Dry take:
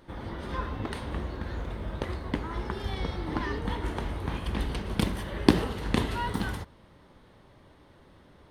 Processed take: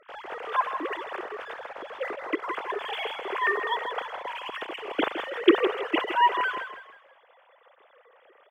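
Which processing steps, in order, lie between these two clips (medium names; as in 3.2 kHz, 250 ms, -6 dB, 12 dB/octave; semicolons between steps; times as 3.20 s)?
formants replaced by sine waves; bass shelf 270 Hz -8.5 dB; in parallel at -6.5 dB: crossover distortion -48 dBFS; on the sum: frequency-shifting echo 161 ms, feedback 37%, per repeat +33 Hz, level -9 dB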